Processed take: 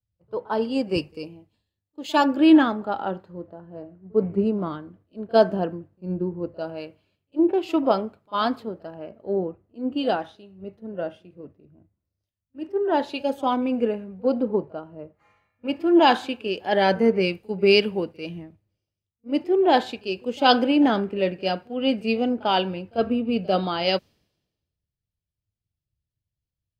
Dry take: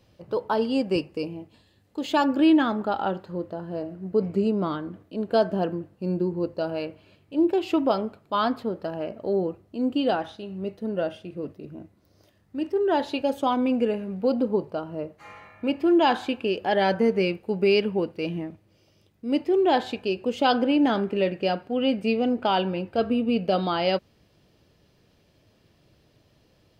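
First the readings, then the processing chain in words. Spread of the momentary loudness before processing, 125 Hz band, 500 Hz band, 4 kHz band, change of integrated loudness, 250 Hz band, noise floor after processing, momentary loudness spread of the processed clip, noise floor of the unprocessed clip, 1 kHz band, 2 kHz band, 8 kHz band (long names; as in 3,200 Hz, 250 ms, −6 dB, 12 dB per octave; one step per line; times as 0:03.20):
13 LU, −0.5 dB, +1.0 dB, +4.0 dB, +2.0 dB, +1.0 dB, below −85 dBFS, 20 LU, −63 dBFS, +2.0 dB, +3.0 dB, can't be measured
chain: echo ahead of the sound 45 ms −19 dB
multiband upward and downward expander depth 100%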